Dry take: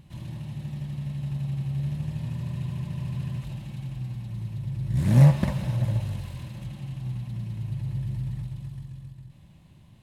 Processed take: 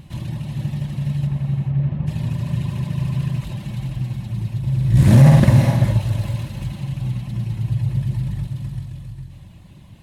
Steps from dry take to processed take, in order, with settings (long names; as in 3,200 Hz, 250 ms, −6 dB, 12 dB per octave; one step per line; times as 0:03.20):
0:01.26–0:02.06: low-pass filter 2,500 Hz → 1,600 Hz 12 dB per octave
reverb reduction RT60 0.78 s
0:04.59–0:05.40: flutter between parallel walls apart 9.1 metres, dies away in 0.91 s
reverb whose tail is shaped and stops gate 460 ms rising, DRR 6 dB
boost into a limiter +11.5 dB
level −1 dB